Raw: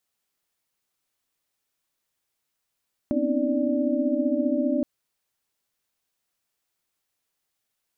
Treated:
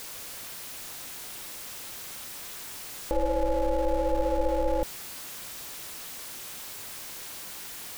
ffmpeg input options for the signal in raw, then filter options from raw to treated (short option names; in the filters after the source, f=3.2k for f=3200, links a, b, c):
-f lavfi -i "aevalsrc='0.0422*(sin(2*PI*246.94*t)+sin(2*PI*261.63*t)+sin(2*PI*277.18*t)+sin(2*PI*311.13*t)+sin(2*PI*587.33*t))':d=1.72:s=44100"
-af "aeval=exprs='val(0)+0.5*0.0282*sgn(val(0))':c=same,anlmdn=0.0631,aeval=exprs='val(0)*sin(2*PI*260*n/s)':c=same"